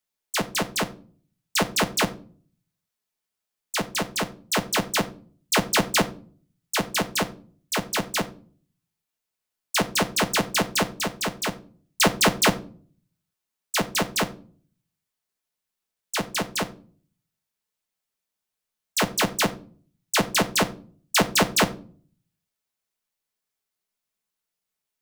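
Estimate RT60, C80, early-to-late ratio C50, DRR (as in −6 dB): 0.40 s, 21.5 dB, 16.5 dB, 6.0 dB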